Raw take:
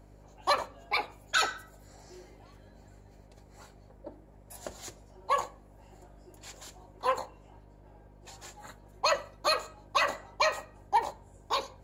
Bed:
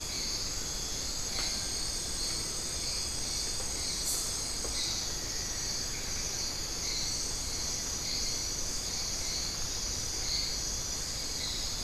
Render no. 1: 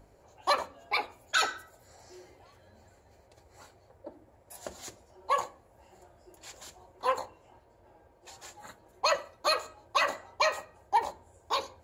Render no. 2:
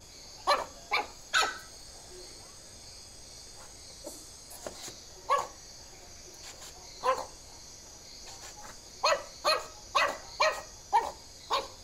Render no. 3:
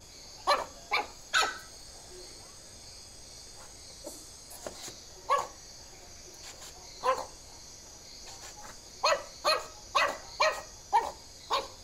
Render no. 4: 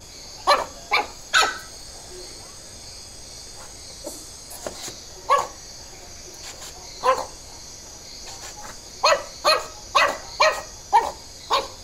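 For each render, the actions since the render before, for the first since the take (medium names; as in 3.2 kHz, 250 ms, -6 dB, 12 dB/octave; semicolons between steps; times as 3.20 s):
de-hum 50 Hz, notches 8
add bed -15 dB
no audible change
trim +9 dB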